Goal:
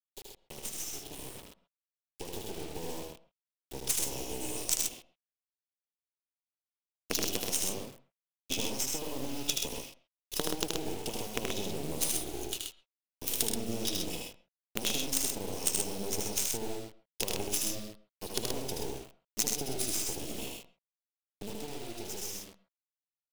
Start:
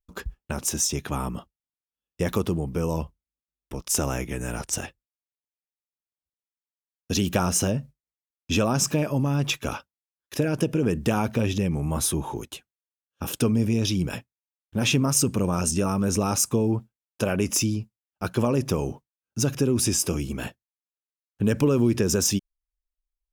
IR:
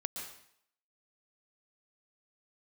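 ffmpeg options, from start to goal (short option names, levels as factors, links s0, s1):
-filter_complex "[0:a]highpass=f=230:w=0.5412,highpass=f=230:w=1.3066,equalizer=f=1500:w=0.48:g=-6.5,bandreject=f=60:t=h:w=6,bandreject=f=120:t=h:w=6,bandreject=f=180:t=h:w=6,bandreject=f=240:t=h:w=6,bandreject=f=300:t=h:w=6,bandreject=f=360:t=h:w=6,aecho=1:1:2.4:0.36,acompressor=threshold=0.0251:ratio=20,asuperstop=centerf=1400:order=20:qfactor=0.76,dynaudnorm=f=260:g=21:m=2.24,acrusher=bits=4:dc=4:mix=0:aa=0.000001,aeval=exprs='0.282*(cos(1*acos(clip(val(0)/0.282,-1,1)))-cos(1*PI/2))+0.0251*(cos(3*acos(clip(val(0)/0.282,-1,1)))-cos(3*PI/2))':c=same,highshelf=f=2100:t=q:w=1.5:g=7.5,aecho=1:1:77|106|129:0.668|0.251|0.562,asplit=2[s0][s1];[1:a]atrim=start_sample=2205,atrim=end_sample=6174,lowpass=2200[s2];[s1][s2]afir=irnorm=-1:irlink=0,volume=0.422[s3];[s0][s3]amix=inputs=2:normalize=0,volume=0.501"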